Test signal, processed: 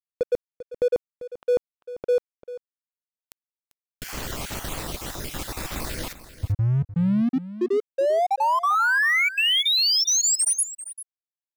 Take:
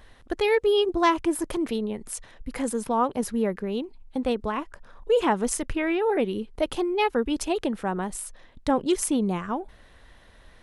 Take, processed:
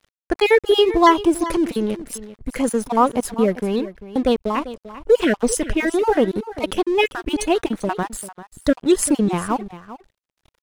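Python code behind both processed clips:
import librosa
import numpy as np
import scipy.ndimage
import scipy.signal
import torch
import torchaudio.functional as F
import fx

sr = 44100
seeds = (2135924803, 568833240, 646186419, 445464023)

y = fx.spec_dropout(x, sr, seeds[0], share_pct=27)
y = np.sign(y) * np.maximum(np.abs(y) - 10.0 ** (-45.0 / 20.0), 0.0)
y = y + 10.0 ** (-15.0 / 20.0) * np.pad(y, (int(394 * sr / 1000.0), 0))[:len(y)]
y = F.gain(torch.from_numpy(y), 8.5).numpy()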